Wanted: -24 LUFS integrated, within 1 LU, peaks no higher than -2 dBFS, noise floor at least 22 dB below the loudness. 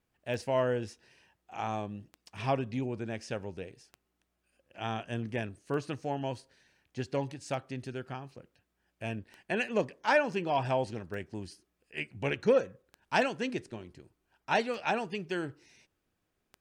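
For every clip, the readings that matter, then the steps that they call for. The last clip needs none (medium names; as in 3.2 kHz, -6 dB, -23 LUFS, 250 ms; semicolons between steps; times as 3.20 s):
clicks found 10; loudness -33.5 LUFS; peak level -13.0 dBFS; loudness target -24.0 LUFS
-> de-click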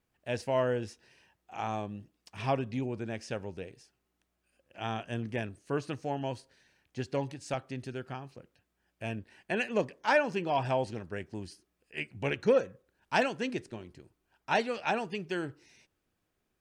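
clicks found 0; loudness -33.5 LUFS; peak level -13.0 dBFS; loudness target -24.0 LUFS
-> trim +9.5 dB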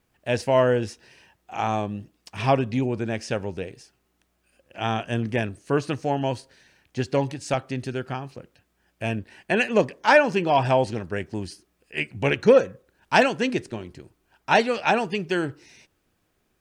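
loudness -24.0 LUFS; peak level -3.5 dBFS; noise floor -71 dBFS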